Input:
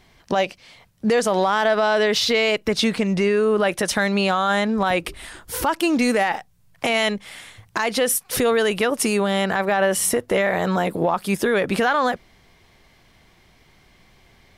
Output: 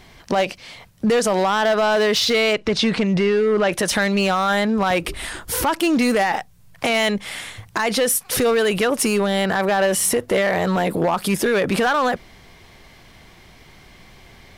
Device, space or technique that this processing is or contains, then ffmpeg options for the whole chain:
clipper into limiter: -filter_complex "[0:a]asoftclip=type=hard:threshold=-15dB,alimiter=limit=-21dB:level=0:latency=1:release=33,asettb=1/sr,asplit=3[a][b][c];[a]atrim=end=2.534[d];[b]atrim=start=2.53:end=3.73,asetpts=PTS-STARTPTS,afade=t=in:d=0.004:c=qsin,afade=t=out:st=1.196:d=0.004:c=qsin,lowpass=5.8k[e];[c]atrim=start=3.726[f];[d][e]acrossfade=d=0.004:c1=hsin:c2=qsin[g];[g][f]acrossfade=d=0.004:c1=qsin:c2=hsin,volume=8dB"

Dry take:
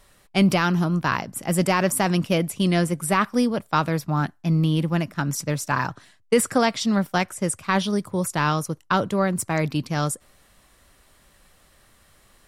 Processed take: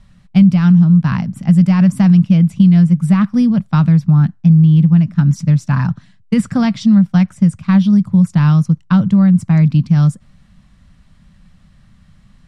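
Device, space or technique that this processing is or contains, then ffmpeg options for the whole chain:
jukebox: -af "lowpass=5.7k,lowshelf=f=270:t=q:w=3:g=13,acompressor=threshold=-6dB:ratio=4,volume=-1dB"

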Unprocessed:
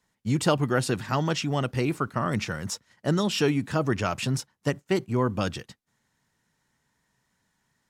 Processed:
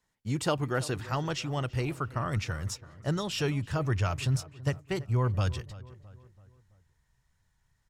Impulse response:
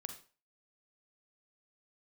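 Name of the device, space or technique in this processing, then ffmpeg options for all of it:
low shelf boost with a cut just above: -filter_complex "[0:a]asubboost=boost=8:cutoff=91,lowshelf=f=78:g=5,equalizer=f=210:t=o:w=0.58:g=-4.5,asplit=2[a][b];[b]adelay=332,lowpass=f=2.1k:p=1,volume=-17.5dB,asplit=2[c][d];[d]adelay=332,lowpass=f=2.1k:p=1,volume=0.49,asplit=2[e][f];[f]adelay=332,lowpass=f=2.1k:p=1,volume=0.49,asplit=2[g][h];[h]adelay=332,lowpass=f=2.1k:p=1,volume=0.49[i];[a][c][e][g][i]amix=inputs=5:normalize=0,volume=-5dB"

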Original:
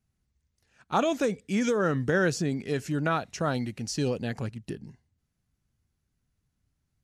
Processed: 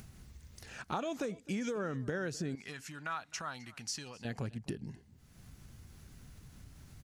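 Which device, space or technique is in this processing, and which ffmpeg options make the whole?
upward and downward compression: -filter_complex "[0:a]acompressor=mode=upward:threshold=-34dB:ratio=2.5,acompressor=threshold=-34dB:ratio=6,asettb=1/sr,asplit=3[a][b][c];[a]atrim=end=2.554[d];[b]atrim=start=2.55:end=4.25,asetpts=PTS-STARTPTS,afade=t=in:d=0.004:c=qsin,afade=t=out:st=1.696:d=0.004:c=qsin,lowshelf=f=710:t=q:w=1.5:g=-11.5[e];[c]atrim=start=4.246[f];[d][e]acrossfade=d=0.004:c1=hsin:c2=qsin[g];[g][f]acrossfade=d=0.004:c1=qsin:c2=hsin,aecho=1:1:259:0.0841"

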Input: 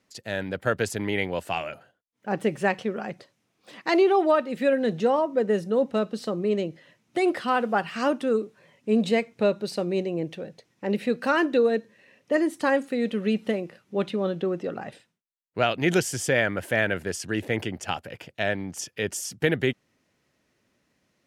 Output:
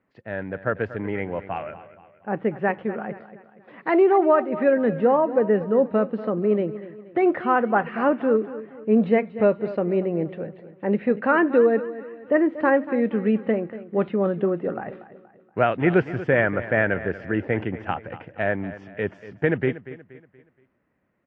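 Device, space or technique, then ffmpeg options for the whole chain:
action camera in a waterproof case: -filter_complex "[0:a]asettb=1/sr,asplit=3[a][b][c];[a]atrim=end=0.974[d];[b]atrim=start=0.97:end=1.56,asetpts=PTS-STARTPTS,afade=t=in:d=0.004:c=qsin,afade=t=out:st=0.586:d=0.004:c=qsin,highshelf=f=4.1k:g=-7[e];[c]atrim=start=1.556[f];[d][e]acrossfade=d=0.004:c1=hsin:c2=qsin[g];[g][f]acrossfade=d=0.004:c1=qsin:c2=hsin,lowpass=f=2k:w=0.5412,lowpass=f=2k:w=1.3066,aecho=1:1:237|474|711|948:0.178|0.0747|0.0314|0.0132,dynaudnorm=f=540:g=13:m=4dB" -ar 22050 -c:a aac -b:a 48k

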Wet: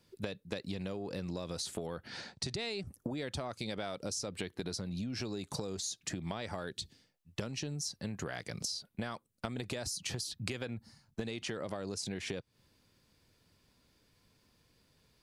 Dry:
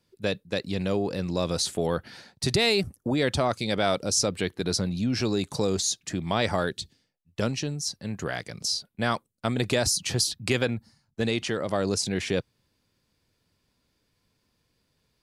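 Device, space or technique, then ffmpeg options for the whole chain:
serial compression, leveller first: -filter_complex "[0:a]acompressor=threshold=-28dB:ratio=2.5,acompressor=threshold=-38dB:ratio=10,asettb=1/sr,asplit=3[a][b][c];[a]atrim=end=2.074[d];[b]atrim=start=2.07:end=2.87,asetpts=PTS-STARTPTS,afade=t=in:d=0.004:c=qsin,afade=t=out:st=0.796:d=0.004:c=qsin,lowpass=f=8.5k:w=0.5412,lowpass=f=8.5k:w=1.3066[e];[c]atrim=start=2.866[f];[d][e]acrossfade=d=0.004:c1=hsin:c2=qsin[g];[g][f]acrossfade=d=0.004:c1=qsin:c2=hsin,volume=3dB"

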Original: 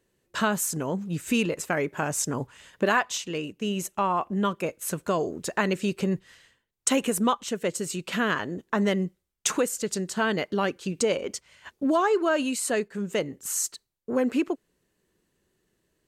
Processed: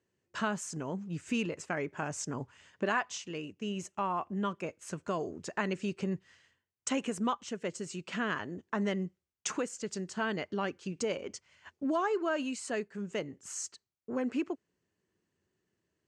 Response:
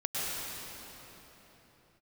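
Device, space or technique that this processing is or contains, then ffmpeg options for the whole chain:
car door speaker: -af "highpass=85,equalizer=f=90:t=q:w=4:g=8,equalizer=f=510:t=q:w=4:g=-3,equalizer=f=3.8k:t=q:w=4:g=-6,lowpass=f=7.2k:w=0.5412,lowpass=f=7.2k:w=1.3066,volume=-7.5dB"

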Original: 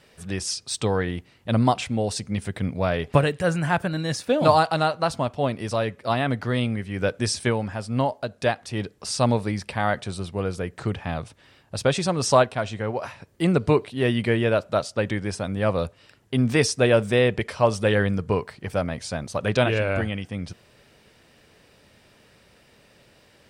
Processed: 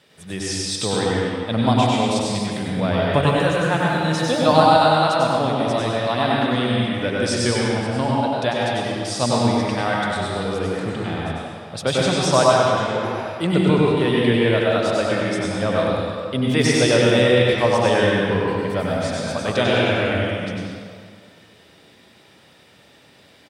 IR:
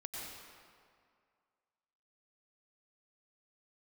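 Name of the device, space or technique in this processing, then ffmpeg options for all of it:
PA in a hall: -filter_complex "[0:a]highpass=110,equalizer=f=3.5k:t=o:w=0.23:g=8,aecho=1:1:98:0.562[a];[1:a]atrim=start_sample=2205[b];[a][b]afir=irnorm=-1:irlink=0,volume=4.5dB"

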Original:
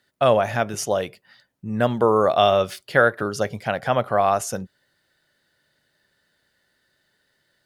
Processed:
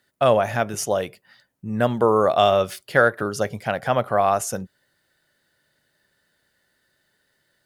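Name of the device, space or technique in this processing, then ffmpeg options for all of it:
exciter from parts: -filter_complex "[0:a]asplit=2[a][b];[b]highpass=f=3k:p=1,asoftclip=type=tanh:threshold=-21dB,highpass=4.9k,volume=-5dB[c];[a][c]amix=inputs=2:normalize=0"

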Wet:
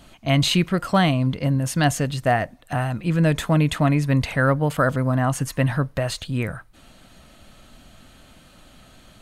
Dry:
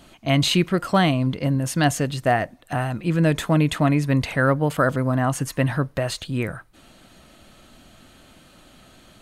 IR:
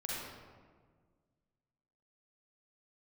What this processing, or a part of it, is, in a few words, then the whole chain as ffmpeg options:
low shelf boost with a cut just above: -af "lowshelf=f=82:g=6,equalizer=f=350:t=o:w=0.52:g=-4"

